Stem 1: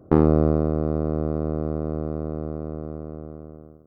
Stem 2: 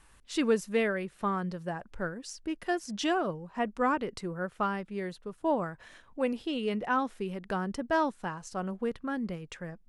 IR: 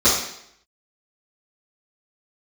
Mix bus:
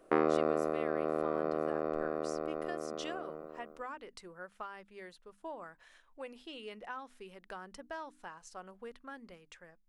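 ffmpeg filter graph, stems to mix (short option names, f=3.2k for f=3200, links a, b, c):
-filter_complex "[0:a]highpass=520,equalizer=f=2.1k:w=1.4:g=9.5,bandreject=f=850:w=12,volume=-4dB[a];[1:a]equalizer=f=140:t=o:w=2.6:g=-14.5,bandreject=f=50:t=h:w=6,bandreject=f=100:t=h:w=6,bandreject=f=150:t=h:w=6,bandreject=f=200:t=h:w=6,bandreject=f=250:t=h:w=6,bandreject=f=300:t=h:w=6,acompressor=threshold=-33dB:ratio=3,volume=-11.5dB[b];[a][b]amix=inputs=2:normalize=0,dynaudnorm=f=410:g=5:m=4dB"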